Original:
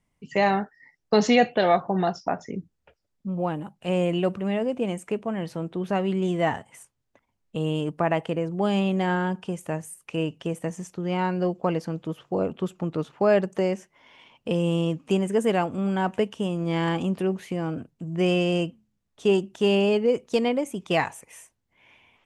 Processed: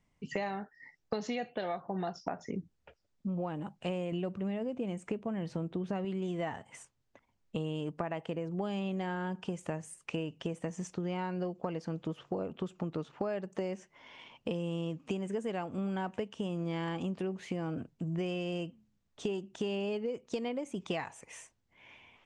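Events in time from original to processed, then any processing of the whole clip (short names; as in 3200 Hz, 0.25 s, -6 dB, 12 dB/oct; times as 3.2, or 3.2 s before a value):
4.12–6.05 low shelf 340 Hz +6.5 dB
whole clip: LPF 7900 Hz 24 dB/oct; compressor 12:1, threshold -32 dBFS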